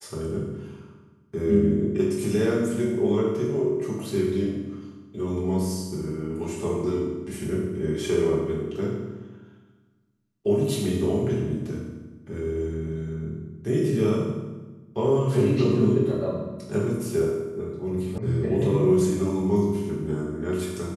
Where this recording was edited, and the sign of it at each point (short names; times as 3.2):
18.18 sound cut off